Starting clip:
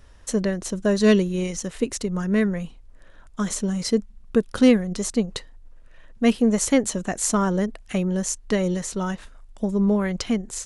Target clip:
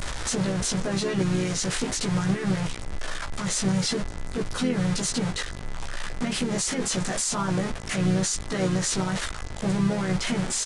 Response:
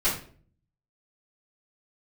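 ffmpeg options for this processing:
-filter_complex "[0:a]aeval=exprs='val(0)+0.5*0.1*sgn(val(0))':c=same,equalizer=f=2800:t=o:w=0.28:g=-2.5,bandreject=f=1100:w=23,acrossover=split=730[s0][s1];[s1]acontrast=23[s2];[s0][s2]amix=inputs=2:normalize=0,alimiter=limit=0.2:level=0:latency=1:release=40,aeval=exprs='val(0)+0.00316*sin(2*PI*2000*n/s)':c=same,asplit=2[s3][s4];[s4]adelay=16,volume=0.794[s5];[s3][s5]amix=inputs=2:normalize=0,aresample=22050,aresample=44100,asplit=3[s6][s7][s8];[s7]asetrate=29433,aresample=44100,atempo=1.49831,volume=0.355[s9];[s8]asetrate=37084,aresample=44100,atempo=1.18921,volume=0.447[s10];[s6][s9][s10]amix=inputs=3:normalize=0,volume=0.376"

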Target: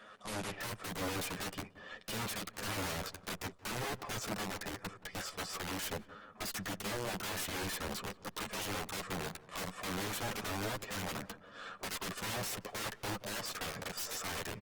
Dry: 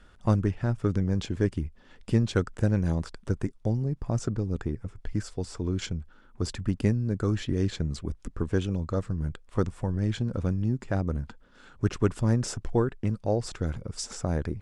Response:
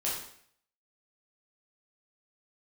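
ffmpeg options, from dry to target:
-filter_complex "[0:a]highpass=f=170:w=0.5412,highpass=f=170:w=1.3066,aecho=1:1:1.7:0.52,asplit=2[s0][s1];[s1]acompressor=threshold=0.0141:ratio=6,volume=0.794[s2];[s0][s2]amix=inputs=2:normalize=0,asoftclip=type=hard:threshold=0.0531,asplit=2[s3][s4];[s4]highpass=f=720:p=1,volume=2.82,asoftclip=type=tanh:threshold=0.0531[s5];[s3][s5]amix=inputs=2:normalize=0,lowpass=f=2600:p=1,volume=0.501,aeval=exprs='(mod(44.7*val(0)+1,2)-1)/44.7':c=same,flanger=delay=9.4:depth=1.4:regen=5:speed=0.47:shape=sinusoidal,aeval=exprs='0.0224*(cos(1*acos(clip(val(0)/0.0224,-1,1)))-cos(1*PI/2))+0.00316*(cos(2*acos(clip(val(0)/0.0224,-1,1)))-cos(2*PI/2))+0.00355*(cos(4*acos(clip(val(0)/0.0224,-1,1)))-cos(4*PI/2))':c=same,asplit=2[s6][s7];[s7]adelay=176,lowpass=f=1300:p=1,volume=0.141,asplit=2[s8][s9];[s9]adelay=176,lowpass=f=1300:p=1,volume=0.51,asplit=2[s10][s11];[s11]adelay=176,lowpass=f=1300:p=1,volume=0.51,asplit=2[s12][s13];[s13]adelay=176,lowpass=f=1300:p=1,volume=0.51[s14];[s8][s10][s12][s14]amix=inputs=4:normalize=0[s15];[s6][s15]amix=inputs=2:normalize=0,volume=1.33" -ar 48000 -c:a libopus -b:a 24k

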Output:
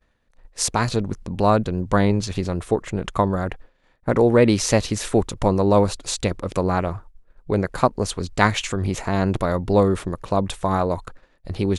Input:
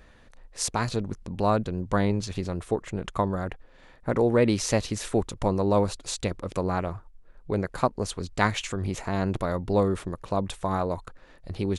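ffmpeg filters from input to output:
-af "agate=range=0.0224:threshold=0.00891:ratio=3:detection=peak,volume=2"

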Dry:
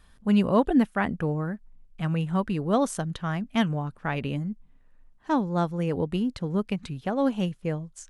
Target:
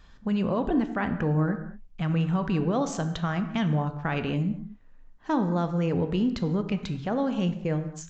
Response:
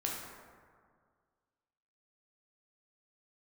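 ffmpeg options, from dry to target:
-filter_complex "[0:a]alimiter=limit=0.0841:level=0:latency=1:release=46,asplit=2[s0][s1];[1:a]atrim=start_sample=2205,afade=t=out:st=0.29:d=0.01,atrim=end_sample=13230[s2];[s1][s2]afir=irnorm=-1:irlink=0,volume=0.501[s3];[s0][s3]amix=inputs=2:normalize=0,aresample=16000,aresample=44100"

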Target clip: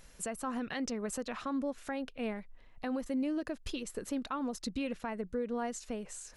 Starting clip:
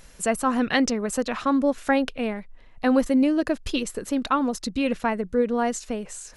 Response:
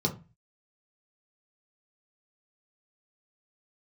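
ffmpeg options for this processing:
-af "alimiter=limit=0.106:level=0:latency=1:release=223,volume=0.422"

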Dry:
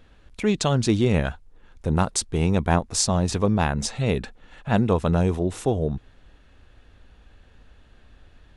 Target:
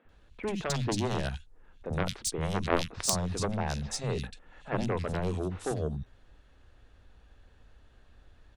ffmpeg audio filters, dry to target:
-filter_complex "[0:a]aeval=exprs='0.668*(cos(1*acos(clip(val(0)/0.668,-1,1)))-cos(1*PI/2))+0.299*(cos(3*acos(clip(val(0)/0.668,-1,1)))-cos(3*PI/2))':c=same,acrossover=split=210|2600[s0][s1][s2];[s0]adelay=50[s3];[s2]adelay=90[s4];[s3][s1][s4]amix=inputs=3:normalize=0,volume=1.58"

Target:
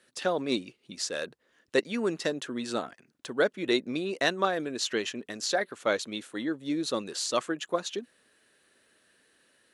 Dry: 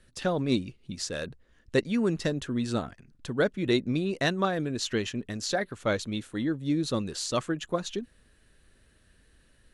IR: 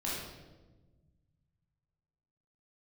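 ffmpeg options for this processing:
-af "highpass=340,volume=1.19"

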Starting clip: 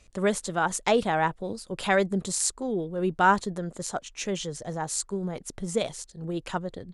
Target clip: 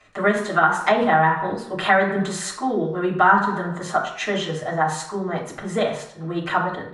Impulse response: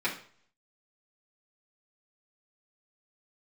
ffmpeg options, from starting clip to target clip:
-filter_complex "[1:a]atrim=start_sample=2205,asetrate=34839,aresample=44100[s0];[0:a][s0]afir=irnorm=-1:irlink=0,acrossover=split=290[s1][s2];[s2]acompressor=threshold=0.1:ratio=3[s3];[s1][s3]amix=inputs=2:normalize=0,equalizer=f=1200:w=0.54:g=12,volume=0.531"

